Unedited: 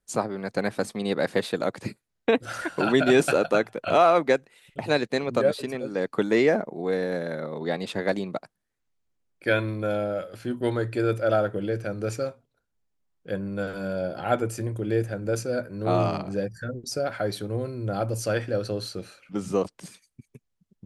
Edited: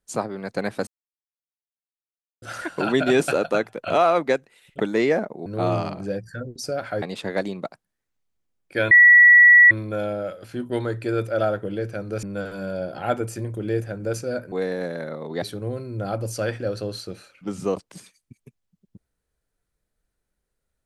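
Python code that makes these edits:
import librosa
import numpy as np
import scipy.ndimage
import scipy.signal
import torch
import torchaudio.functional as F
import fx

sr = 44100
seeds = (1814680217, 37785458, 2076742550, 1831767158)

y = fx.edit(x, sr, fx.silence(start_s=0.87, length_s=1.55),
    fx.cut(start_s=4.8, length_s=1.37),
    fx.swap(start_s=6.83, length_s=0.9, other_s=15.74, other_length_s=1.56),
    fx.insert_tone(at_s=9.62, length_s=0.8, hz=1940.0, db=-7.5),
    fx.cut(start_s=12.14, length_s=1.31), tone=tone)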